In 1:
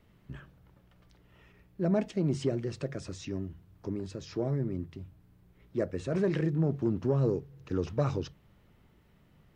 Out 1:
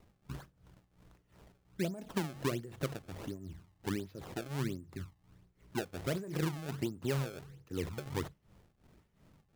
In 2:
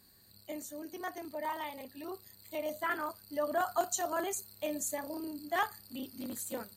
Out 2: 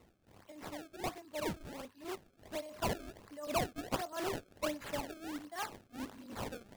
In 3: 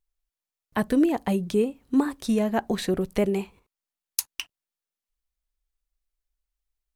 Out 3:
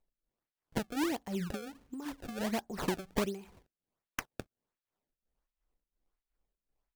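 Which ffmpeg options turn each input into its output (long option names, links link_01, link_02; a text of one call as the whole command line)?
ffmpeg -i in.wav -af "acrusher=samples=26:mix=1:aa=0.000001:lfo=1:lforange=41.6:lforate=1.4,acompressor=threshold=-29dB:ratio=6,tremolo=f=2.8:d=0.81,volume=1dB" out.wav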